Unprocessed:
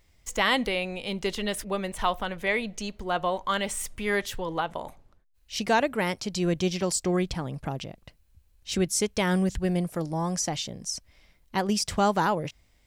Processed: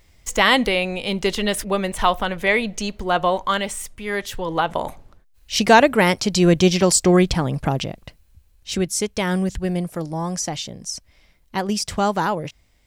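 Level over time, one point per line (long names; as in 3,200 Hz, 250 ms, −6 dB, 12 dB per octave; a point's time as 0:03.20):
0:03.40 +8 dB
0:03.98 −1 dB
0:04.80 +11 dB
0:07.86 +11 dB
0:08.87 +3 dB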